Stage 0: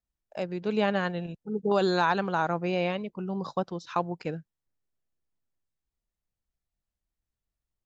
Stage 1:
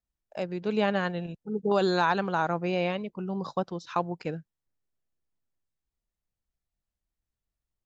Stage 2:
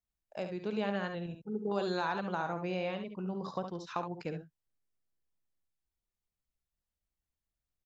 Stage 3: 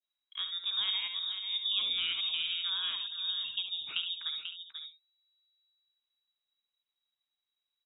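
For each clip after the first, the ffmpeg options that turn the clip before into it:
-af anull
-filter_complex "[0:a]acompressor=threshold=-29dB:ratio=2,asplit=2[a][b];[b]aecho=0:1:55|70:0.224|0.398[c];[a][c]amix=inputs=2:normalize=0,volume=-4.5dB"
-filter_complex "[0:a]adynamicequalizer=threshold=0.00355:dfrequency=1700:dqfactor=0.73:tfrequency=1700:tqfactor=0.73:attack=5:release=100:ratio=0.375:range=2:mode=cutabove:tftype=bell,asplit=2[a][b];[b]adelay=489.8,volume=-7dB,highshelf=f=4k:g=-11[c];[a][c]amix=inputs=2:normalize=0,lowpass=f=3.3k:t=q:w=0.5098,lowpass=f=3.3k:t=q:w=0.6013,lowpass=f=3.3k:t=q:w=0.9,lowpass=f=3.3k:t=q:w=2.563,afreqshift=-3900,volume=1dB"

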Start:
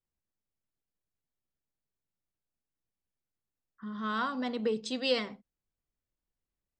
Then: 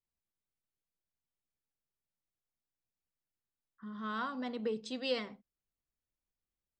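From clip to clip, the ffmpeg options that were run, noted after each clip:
-af "highshelf=f=4.8k:g=-4.5,volume=-5dB"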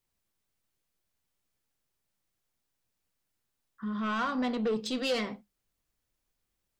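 -filter_complex "[0:a]asplit=2[a][b];[b]alimiter=level_in=8dB:limit=-24dB:level=0:latency=1:release=33,volume=-8dB,volume=0dB[c];[a][c]amix=inputs=2:normalize=0,asoftclip=type=tanh:threshold=-29.5dB,flanger=delay=7.2:depth=3.7:regen=-70:speed=1.1:shape=triangular,volume=9dB"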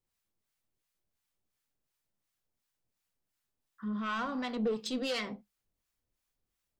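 -filter_complex "[0:a]acrossover=split=810[a][b];[a]aeval=exprs='val(0)*(1-0.7/2+0.7/2*cos(2*PI*2.8*n/s))':c=same[c];[b]aeval=exprs='val(0)*(1-0.7/2-0.7/2*cos(2*PI*2.8*n/s))':c=same[d];[c][d]amix=inputs=2:normalize=0"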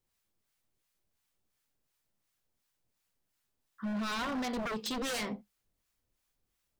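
-af "aeval=exprs='0.0211*(abs(mod(val(0)/0.0211+3,4)-2)-1)':c=same,volume=3.5dB"

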